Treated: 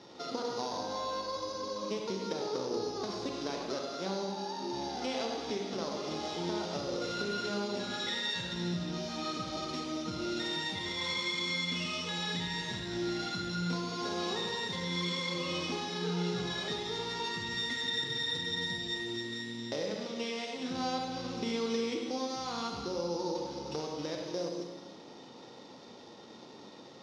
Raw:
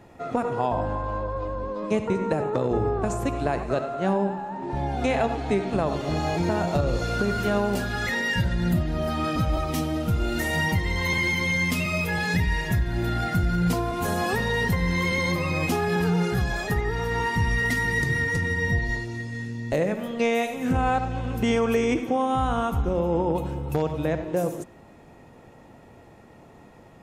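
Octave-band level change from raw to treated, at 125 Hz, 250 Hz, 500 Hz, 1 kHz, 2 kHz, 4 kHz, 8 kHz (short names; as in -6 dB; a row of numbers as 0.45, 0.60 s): -16.5, -10.5, -10.0, -10.5, -12.5, +2.0, -5.5 dB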